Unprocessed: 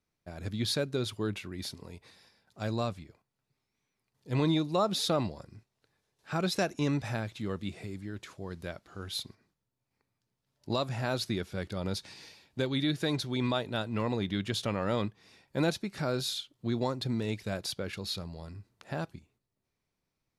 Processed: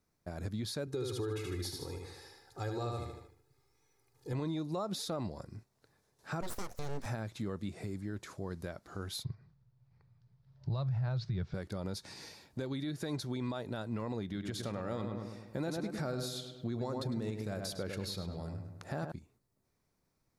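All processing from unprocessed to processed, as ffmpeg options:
-filter_complex "[0:a]asettb=1/sr,asplit=3[a][b][c];[a]atrim=end=0.874[d];[b]atrim=start=0.87:end=4.33,asetpts=PTS-STARTPTS,afade=t=in:d=0.004:c=qsin,afade=t=out:st=3.456:d=0.004:c=qsin,aecho=1:1:2.4:0.85,atrim=end_sample=152586,aecho=1:1:76|152|228|304|380:0.596|0.25|0.105|0.0441|0.0185,atrim=end_sample=152586[e];[c]atrim=start=4.326[f];[d][e]acrossfade=d=0.004:c1=hsin:c2=qsin[g];[g][f]acrossfade=d=0.004:c1=qsin:c2=hsin,asettb=1/sr,asplit=3[h][i][j];[h]atrim=end=6.414[k];[i]atrim=start=6.41:end=7.06,asetpts=PTS-STARTPTS,afade=t=in:d=0.004:c=qsin,afade=t=out:st=0.646:d=0.004:c=qsin,highshelf=f=9.4k:g=7,aeval=exprs='abs(val(0))':c=same[l];[j]atrim=start=7.056[m];[k][l]acrossfade=d=0.004:c1=hsin:c2=qsin[n];[n][m]acrossfade=d=0.004:c1=qsin:c2=hsin,asettb=1/sr,asplit=3[o][p][q];[o]atrim=end=9.244[r];[p]atrim=start=9.24:end=11.54,asetpts=PTS-STARTPTS,afade=t=in:d=0.004:c=qsin,afade=t=out:st=2.296:d=0.004:c=qsin,lowpass=f=4.7k:w=0.5412,lowpass=f=4.7k:w=1.3066,lowshelf=f=190:t=q:w=3:g=10[s];[q]atrim=start=11.536[t];[r][s]acrossfade=d=0.004:c1=hsin:c2=qsin[u];[u][t]acrossfade=d=0.004:c1=qsin:c2=hsin,asettb=1/sr,asplit=3[v][w][x];[v]atrim=end=14.254[y];[w]atrim=start=14.25:end=19.12,asetpts=PTS-STARTPTS,afade=t=in:d=0.004:c=qsin,afade=t=out:st=4.866:d=0.004:c=qsin,bandreject=f=1k:w=19,asplit=2[z][aa];[aa]adelay=103,lowpass=f=2.6k:p=1,volume=-6.5dB,asplit=2[ab][ac];[ac]adelay=103,lowpass=f=2.6k:p=1,volume=0.47,asplit=2[ad][ae];[ae]adelay=103,lowpass=f=2.6k:p=1,volume=0.47,asplit=2[af][ag];[ag]adelay=103,lowpass=f=2.6k:p=1,volume=0.47,asplit=2[ah][ai];[ai]adelay=103,lowpass=f=2.6k:p=1,volume=0.47,asplit=2[aj][ak];[ak]adelay=103,lowpass=f=2.6k:p=1,volume=0.47[al];[z][ab][ad][af][ah][aj][al]amix=inputs=7:normalize=0,atrim=end_sample=214767[am];[x]atrim=start=19.116[an];[y][am]acrossfade=d=0.004:c1=hsin:c2=qsin[ao];[ao][an]acrossfade=d=0.004:c1=qsin:c2=hsin,alimiter=level_in=2.5dB:limit=-24dB:level=0:latency=1:release=142,volume=-2.5dB,acompressor=threshold=-50dB:ratio=1.5,equalizer=f=2.9k:w=1.4:g=-8.5,volume=5.5dB"

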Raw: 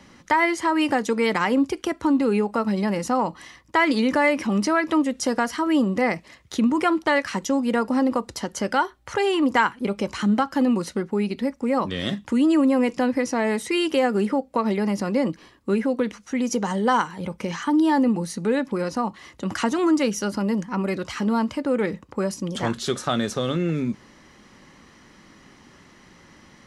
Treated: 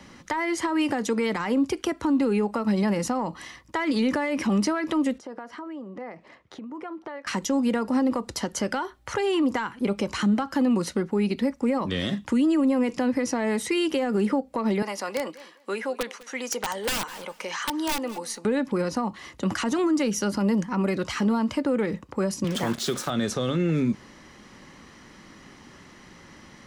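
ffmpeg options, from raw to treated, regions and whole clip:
-filter_complex "[0:a]asettb=1/sr,asplit=3[a][b][c];[a]atrim=end=5.184[d];[b]atrim=start=5.18:end=7.27,asetpts=PTS-STARTPTS,afade=t=in:d=0.004:c=qsin,afade=t=out:st=2.086:d=0.004:c=qsin,acompressor=threshold=-34dB:ratio=8:attack=3.2:release=140:knee=1:detection=peak,bandpass=f=620:t=q:w=0.59[e];[c]atrim=start=7.266[f];[d][e]acrossfade=d=0.004:c1=hsin:c2=qsin[g];[g][f]acrossfade=d=0.004:c1=qsin:c2=hsin,asettb=1/sr,asplit=3[h][i][j];[h]atrim=end=14.824[k];[i]atrim=start=14.82:end=18.45,asetpts=PTS-STARTPTS,afade=t=in:d=0.004:c=qsin,afade=t=out:st=3.626:d=0.004:c=qsin,highpass=630,aeval=exprs='(mod(8.91*val(0)+1,2)-1)/8.91':c=same,aecho=1:1:202|404:0.0891|0.0178,atrim=end_sample=160083[l];[j]atrim=start=18.446[m];[k][l]acrossfade=d=0.004:c1=hsin:c2=qsin[n];[n][m]acrossfade=d=0.004:c1=qsin:c2=hsin,asettb=1/sr,asplit=3[o][p][q];[o]atrim=end=22.444[r];[p]atrim=start=22.44:end=23.1,asetpts=PTS-STARTPTS,afade=t=in:d=0.004:c=qsin,afade=t=out:st=0.656:d=0.004:c=qsin,highpass=f=120:w=0.5412,highpass=f=120:w=1.3066,acrusher=bits=5:mix=0:aa=0.5[s];[q]atrim=start=23.096[t];[r][s]acrossfade=d=0.004:c1=hsin:c2=qsin[u];[u][t]acrossfade=d=0.004:c1=qsin:c2=hsin,acontrast=51,alimiter=limit=-11.5dB:level=0:latency=1:release=85,acrossover=split=340[v][w];[w]acompressor=threshold=-21dB:ratio=6[x];[v][x]amix=inputs=2:normalize=0,volume=-4dB"

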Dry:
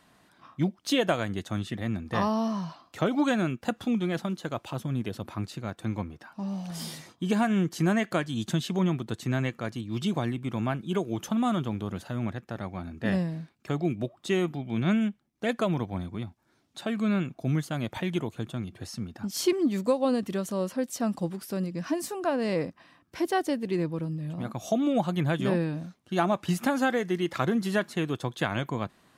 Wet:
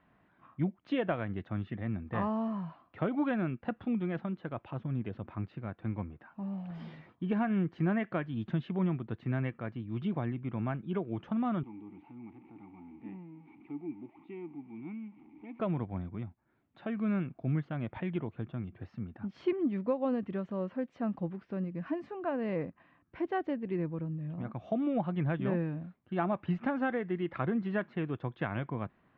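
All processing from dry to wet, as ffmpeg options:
-filter_complex "[0:a]asettb=1/sr,asplit=3[a][b][c];[a]atrim=end=11.634[d];[b]atrim=start=11.63:end=15.6,asetpts=PTS-STARTPTS,afade=t=in:d=0.004:c=qsin,afade=t=out:st=3.966:d=0.004:c=qsin,aeval=exprs='val(0)+0.5*0.0224*sgn(val(0))':c=same,asplit=3[e][f][g];[e]bandpass=f=300:t=q:w=8,volume=0dB[h];[f]bandpass=f=870:t=q:w=8,volume=-6dB[i];[g]bandpass=f=2.24k:t=q:w=8,volume=-9dB[j];[h][i][j]amix=inputs=3:normalize=0,bandreject=f=1k:w=20[k];[c]atrim=start=15.596[l];[d][k]acrossfade=d=0.004:c1=hsin:c2=qsin[m];[m][l]acrossfade=d=0.004:c1=qsin:c2=hsin,lowpass=f=2.5k:w=0.5412,lowpass=f=2.5k:w=1.3066,lowshelf=f=190:g=5,volume=-7dB"

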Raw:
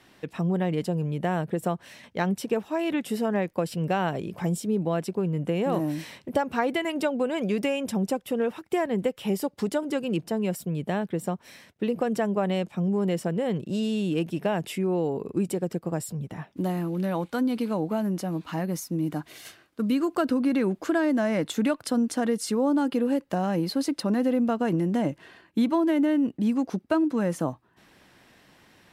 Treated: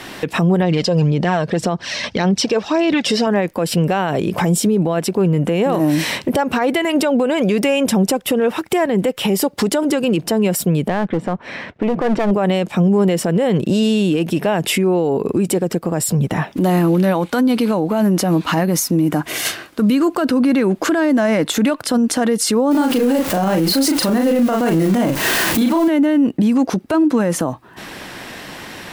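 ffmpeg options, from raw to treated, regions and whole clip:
-filter_complex "[0:a]asettb=1/sr,asplit=3[a][b][c];[a]atrim=end=0.624[d];[b]atrim=start=0.62:end=3.27,asetpts=PTS-STARTPTS,afade=t=in:d=0.004:c=qsin,afade=t=out:st=2.646:d=0.004:c=qsin,aphaser=in_gain=1:out_gain=1:delay=1.9:decay=0.45:speed=1.8:type=sinusoidal,lowpass=f=5.2k:t=q:w=2.7[e];[c]atrim=start=3.266[f];[d][e]acrossfade=d=0.004:c1=hsin:c2=qsin[g];[g][f]acrossfade=d=0.004:c1=qsin:c2=hsin,asettb=1/sr,asplit=3[h][i][j];[h]atrim=end=10.884[k];[i]atrim=start=10.88:end=12.31,asetpts=PTS-STARTPTS,afade=t=in:d=0.004:c=qsin,afade=t=out:st=1.426:d=0.004:c=qsin,lowpass=2.2k,aeval=exprs='clip(val(0),-1,0.0299)':c=same[l];[j]atrim=start=12.306[m];[k][l]acrossfade=d=0.004:c1=hsin:c2=qsin[n];[n][m]acrossfade=d=0.004:c1=qsin:c2=hsin,asettb=1/sr,asplit=3[o][p][q];[o]atrim=end=19.024[r];[p]atrim=start=19.02:end=19.44,asetpts=PTS-STARTPTS,afade=t=in:d=0.004:c=qsin,afade=t=out:st=0.416:d=0.004:c=qsin,acompressor=mode=upward:threshold=-40dB:ratio=2.5:attack=3.2:release=140:knee=2.83:detection=peak,equalizer=f=4.1k:w=2.6:g=-6[s];[q]atrim=start=19.436[t];[r][s]acrossfade=d=0.004:c1=hsin:c2=qsin[u];[u][t]acrossfade=d=0.004:c1=qsin:c2=hsin,asettb=1/sr,asplit=3[v][w][x];[v]atrim=end=22.714[y];[w]atrim=start=22.71:end=25.88,asetpts=PTS-STARTPTS,afade=t=in:d=0.004:c=qsin,afade=t=out:st=3.166:d=0.004:c=qsin,aeval=exprs='val(0)+0.5*0.0178*sgn(val(0))':c=same,highshelf=f=8.7k:g=8,asplit=2[z][aa];[aa]adelay=37,volume=-4dB[ab];[z][ab]amix=inputs=2:normalize=0,atrim=end_sample=139797[ac];[x]atrim=start=25.876[ad];[y][ac]acrossfade=d=0.004:c1=hsin:c2=qsin[ae];[ae][ad]acrossfade=d=0.004:c1=qsin:c2=hsin,equalizer=f=78:t=o:w=2.9:g=-4.5,acompressor=threshold=-40dB:ratio=2,alimiter=level_in=32dB:limit=-1dB:release=50:level=0:latency=1,volume=-7.5dB"

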